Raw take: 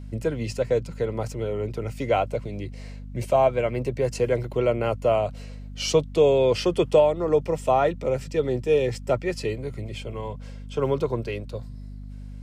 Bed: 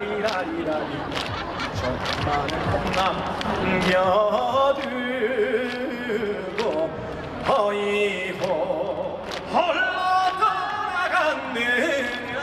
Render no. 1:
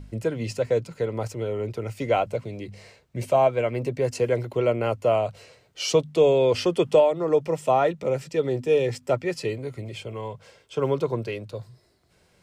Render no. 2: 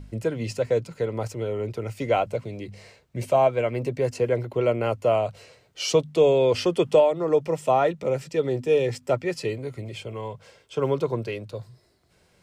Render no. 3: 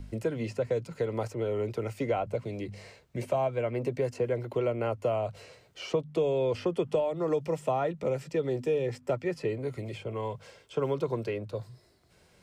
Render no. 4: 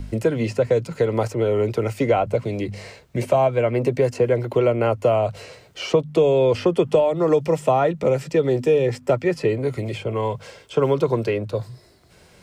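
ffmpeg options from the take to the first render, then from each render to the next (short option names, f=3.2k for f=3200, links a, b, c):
-af "bandreject=f=50:t=h:w=4,bandreject=f=100:t=h:w=4,bandreject=f=150:t=h:w=4,bandreject=f=200:t=h:w=4,bandreject=f=250:t=h:w=4"
-filter_complex "[0:a]asettb=1/sr,asplit=3[a][b][c];[a]atrim=end=4.124[d];[b]atrim=start=4.12:end=4.61,asetpts=PTS-STARTPTS,afade=t=in:d=0.004:c=qsin,afade=t=out:st=0.486:d=0.004:c=qsin,equalizer=f=9k:w=0.3:g=-5[e];[c]atrim=start=4.606[f];[d][e]acrossfade=d=0.004:c1=hsin:c2=qsin[g];[g][f]acrossfade=d=0.004:c1=qsin:c2=hsin"
-filter_complex "[0:a]acrossover=split=210|2100[a][b][c];[a]acompressor=threshold=-38dB:ratio=4[d];[b]acompressor=threshold=-27dB:ratio=4[e];[c]acompressor=threshold=-52dB:ratio=4[f];[d][e][f]amix=inputs=3:normalize=0"
-af "volume=10.5dB"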